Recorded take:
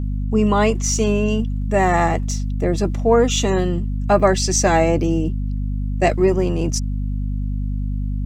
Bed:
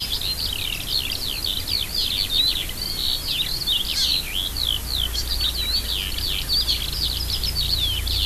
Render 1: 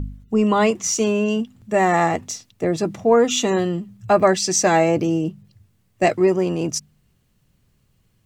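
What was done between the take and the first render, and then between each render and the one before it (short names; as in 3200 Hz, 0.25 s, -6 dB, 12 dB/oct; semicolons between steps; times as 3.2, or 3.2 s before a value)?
de-hum 50 Hz, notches 5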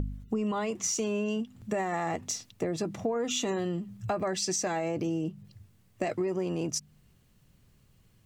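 limiter -12.5 dBFS, peak gain reduction 8.5 dB; compressor 4:1, threshold -29 dBFS, peak gain reduction 11 dB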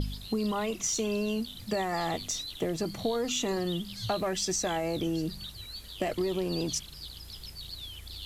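add bed -20 dB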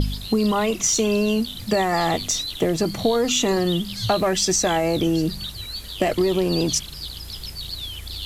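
gain +10 dB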